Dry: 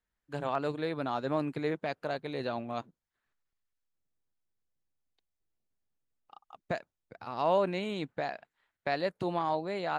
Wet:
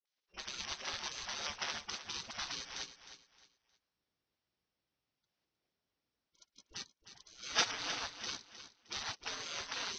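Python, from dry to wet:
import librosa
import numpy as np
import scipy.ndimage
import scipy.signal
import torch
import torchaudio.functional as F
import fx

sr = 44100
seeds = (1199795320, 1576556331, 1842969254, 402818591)

p1 = np.r_[np.sort(x[:len(x) // 16 * 16].reshape(-1, 16), axis=1).ravel(), x[len(x) // 16 * 16:]]
p2 = scipy.signal.sosfilt(scipy.signal.butter(12, 6000.0, 'lowpass', fs=sr, output='sos'), p1)
p3 = fx.low_shelf(p2, sr, hz=400.0, db=-4.0)
p4 = fx.level_steps(p3, sr, step_db=13)
p5 = fx.dispersion(p4, sr, late='highs', ms=56.0, hz=370.0)
p6 = fx.spec_gate(p5, sr, threshold_db=-25, keep='weak')
p7 = p6 + fx.echo_feedback(p6, sr, ms=310, feedback_pct=29, wet_db=-11.5, dry=0)
y = p7 * 10.0 ** (15.5 / 20.0)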